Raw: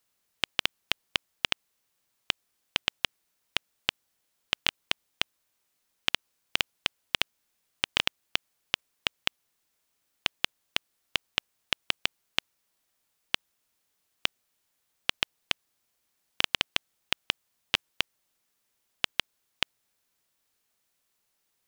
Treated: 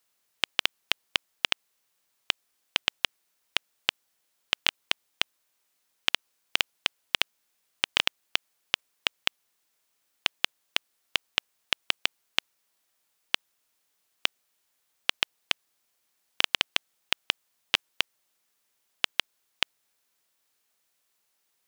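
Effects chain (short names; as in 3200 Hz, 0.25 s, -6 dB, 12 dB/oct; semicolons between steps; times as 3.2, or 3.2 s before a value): low shelf 230 Hz -9 dB; gain +2 dB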